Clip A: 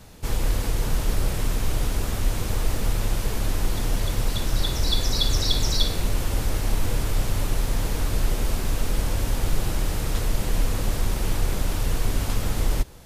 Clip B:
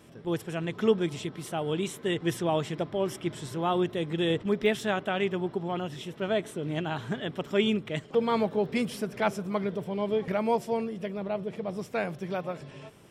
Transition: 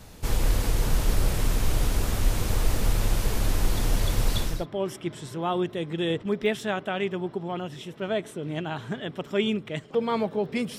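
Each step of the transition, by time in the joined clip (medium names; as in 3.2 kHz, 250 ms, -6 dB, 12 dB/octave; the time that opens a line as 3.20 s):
clip A
4.52 s: go over to clip B from 2.72 s, crossfade 0.28 s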